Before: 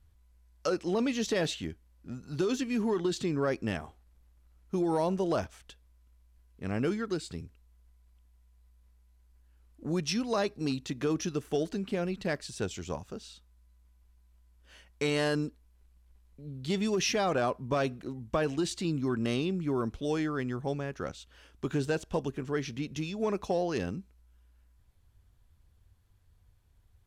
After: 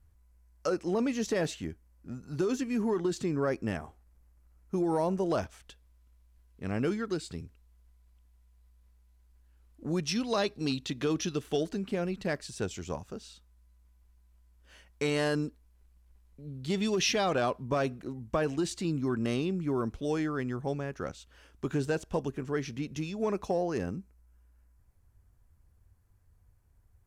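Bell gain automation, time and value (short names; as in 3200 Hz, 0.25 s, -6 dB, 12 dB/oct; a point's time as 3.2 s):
bell 3500 Hz 0.87 oct
-8 dB
from 5.3 s -1 dB
from 10.16 s +6 dB
from 11.61 s -2.5 dB
from 16.78 s +4 dB
from 17.63 s -4 dB
from 23.51 s -12 dB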